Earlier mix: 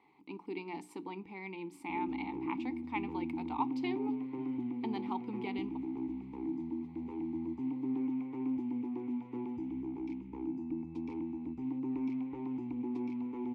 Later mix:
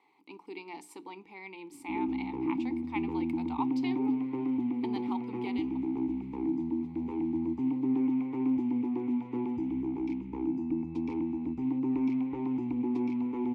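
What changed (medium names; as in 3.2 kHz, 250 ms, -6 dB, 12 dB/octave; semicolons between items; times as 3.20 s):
speech: add tone controls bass -13 dB, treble +7 dB; background +6.5 dB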